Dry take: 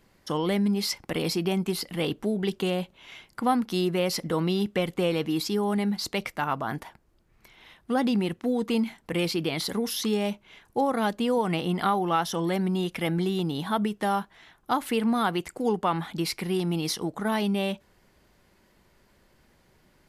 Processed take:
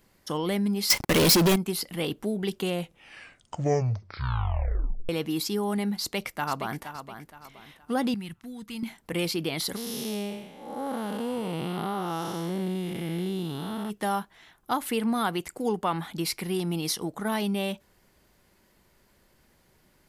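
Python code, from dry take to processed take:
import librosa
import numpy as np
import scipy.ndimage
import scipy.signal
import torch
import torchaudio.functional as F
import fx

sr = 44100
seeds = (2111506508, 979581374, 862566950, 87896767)

y = fx.leveller(x, sr, passes=5, at=(0.9, 1.56))
y = fx.echo_throw(y, sr, start_s=6.0, length_s=0.83, ms=470, feedback_pct=35, wet_db=-10.0)
y = fx.curve_eq(y, sr, hz=(120.0, 490.0, 1600.0), db=(0, -21, -6), at=(8.14, 8.83))
y = fx.spec_blur(y, sr, span_ms=313.0, at=(9.75, 13.89), fade=0.02)
y = fx.edit(y, sr, fx.tape_stop(start_s=2.69, length_s=2.4), tone=tone)
y = fx.high_shelf(y, sr, hz=7600.0, db=8.5)
y = F.gain(torch.from_numpy(y), -2.0).numpy()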